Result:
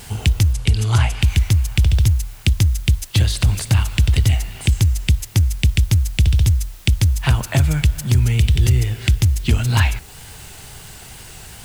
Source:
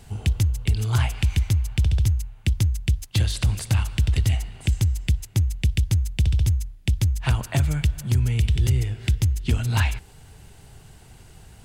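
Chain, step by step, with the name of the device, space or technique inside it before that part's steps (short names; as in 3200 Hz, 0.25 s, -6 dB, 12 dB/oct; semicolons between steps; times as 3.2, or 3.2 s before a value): noise-reduction cassette on a plain deck (mismatched tape noise reduction encoder only; wow and flutter; white noise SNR 30 dB); 0.53–1.22 LPF 11000 Hz 24 dB/oct; gain +5.5 dB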